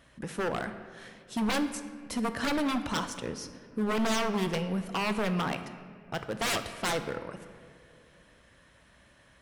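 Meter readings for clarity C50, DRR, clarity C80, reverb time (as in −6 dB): 10.5 dB, 9.0 dB, 11.5 dB, 2.3 s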